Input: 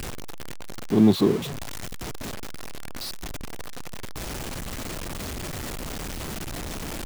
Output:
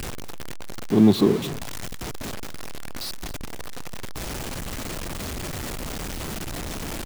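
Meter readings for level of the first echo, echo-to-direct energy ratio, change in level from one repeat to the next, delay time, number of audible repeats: -18.0 dB, -18.0 dB, no steady repeat, 0.218 s, 1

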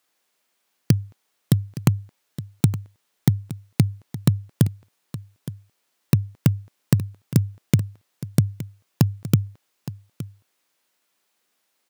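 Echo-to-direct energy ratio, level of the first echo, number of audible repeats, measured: -15.0 dB, -15.0 dB, 1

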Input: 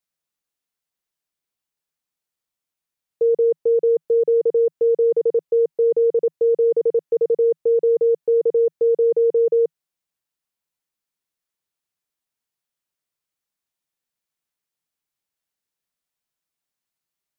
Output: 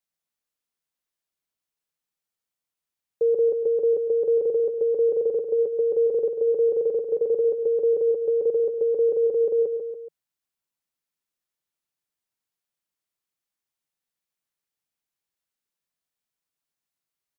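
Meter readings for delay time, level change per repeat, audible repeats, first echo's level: 0.142 s, -5.5 dB, 3, -7.0 dB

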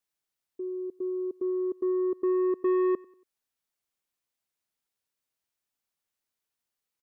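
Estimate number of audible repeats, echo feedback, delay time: 2, 39%, 94 ms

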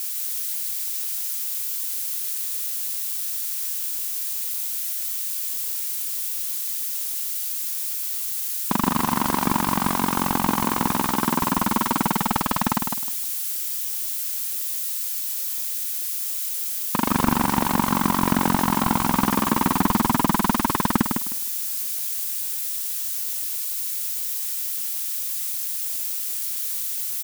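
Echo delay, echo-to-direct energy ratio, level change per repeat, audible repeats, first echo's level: 0.155 s, -5.5 dB, -13.5 dB, 3, -5.5 dB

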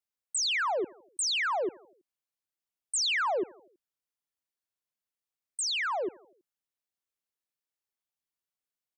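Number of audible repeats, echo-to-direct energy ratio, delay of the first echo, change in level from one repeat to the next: 3, -21.5 dB, 81 ms, -5.0 dB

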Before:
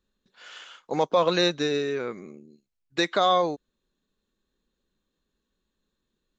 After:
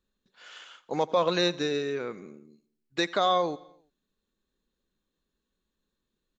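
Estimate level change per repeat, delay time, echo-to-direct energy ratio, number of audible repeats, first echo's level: -4.5 dB, 85 ms, -20.5 dB, 3, -22.0 dB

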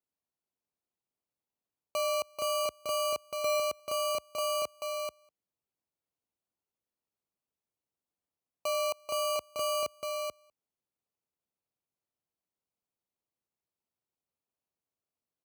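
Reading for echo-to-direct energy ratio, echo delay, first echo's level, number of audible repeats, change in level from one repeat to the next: -4.5 dB, 0.436 s, -4.5 dB, 1, no steady repeat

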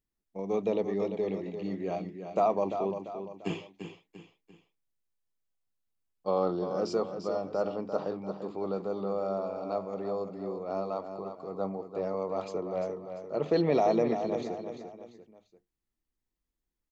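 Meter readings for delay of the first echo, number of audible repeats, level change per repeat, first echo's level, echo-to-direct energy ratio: 0.344 s, 3, -7.5 dB, -8.5 dB, -7.5 dB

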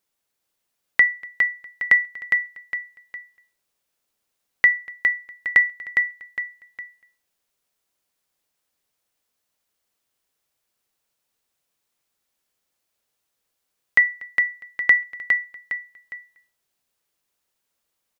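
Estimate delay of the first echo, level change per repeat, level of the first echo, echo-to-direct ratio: 0.409 s, -8.5 dB, -4.5 dB, -4.0 dB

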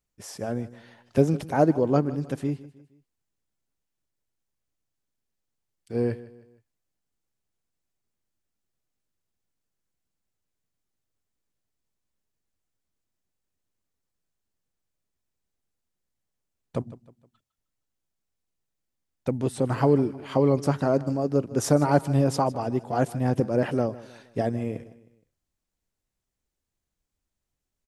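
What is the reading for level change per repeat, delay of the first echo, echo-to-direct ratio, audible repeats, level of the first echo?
-7.5 dB, 0.156 s, -17.0 dB, 3, -18.0 dB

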